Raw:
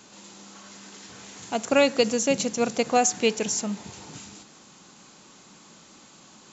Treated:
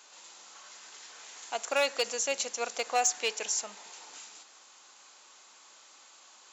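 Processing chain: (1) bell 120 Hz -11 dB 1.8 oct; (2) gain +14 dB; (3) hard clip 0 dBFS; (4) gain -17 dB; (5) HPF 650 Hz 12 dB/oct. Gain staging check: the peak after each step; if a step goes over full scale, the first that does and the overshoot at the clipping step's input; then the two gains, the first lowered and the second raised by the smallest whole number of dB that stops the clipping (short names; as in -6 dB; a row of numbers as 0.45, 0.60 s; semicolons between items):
-8.5, +5.5, 0.0, -17.0, -14.0 dBFS; step 2, 5.5 dB; step 2 +8 dB, step 4 -11 dB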